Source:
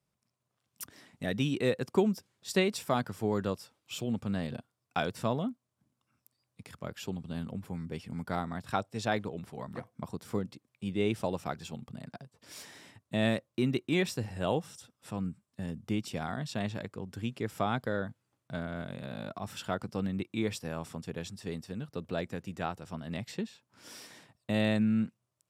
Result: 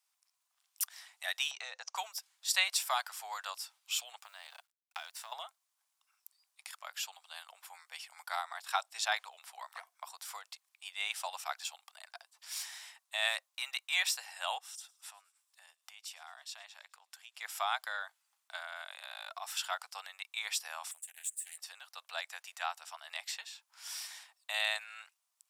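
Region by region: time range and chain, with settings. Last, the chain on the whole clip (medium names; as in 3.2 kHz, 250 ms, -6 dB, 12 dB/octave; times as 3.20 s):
1.51–1.96 s: tilt EQ -3.5 dB/octave + compression 5:1, threshold -26 dBFS + resonant low-pass 6.1 kHz, resonance Q 8
4.18–5.32 s: companding laws mixed up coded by A + compression 12:1, threshold -37 dBFS
14.58–17.39 s: compression 2:1, threshold -53 dBFS + feedback echo behind a high-pass 107 ms, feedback 57%, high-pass 3.9 kHz, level -21 dB
20.91–21.58 s: median filter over 3 samples + FFT filter 110 Hz 0 dB, 150 Hz -22 dB, 360 Hz -14 dB, 720 Hz -18 dB, 1.1 kHz -26 dB, 1.9 kHz -7 dB, 2.8 kHz -10 dB, 5.3 kHz -22 dB, 8.1 kHz +14 dB, 15 kHz +7 dB + loudspeaker Doppler distortion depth 0.33 ms
whole clip: steep high-pass 730 Hz 48 dB/octave; treble shelf 2.3 kHz +10.5 dB; trim -1.5 dB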